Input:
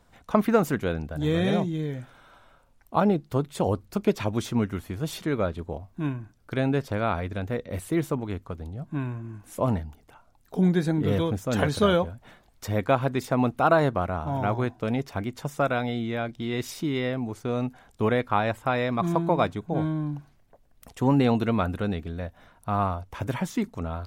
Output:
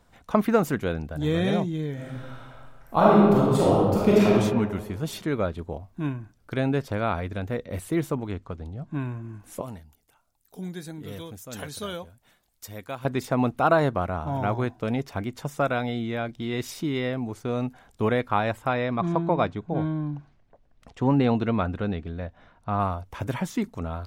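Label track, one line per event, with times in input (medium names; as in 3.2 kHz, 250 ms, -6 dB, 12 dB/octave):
1.930000	4.310000	reverb throw, RT60 1.5 s, DRR -6 dB
8.310000	8.940000	low-pass 7.3 kHz
9.610000	13.050000	pre-emphasis filter coefficient 0.8
18.730000	22.800000	distance through air 110 m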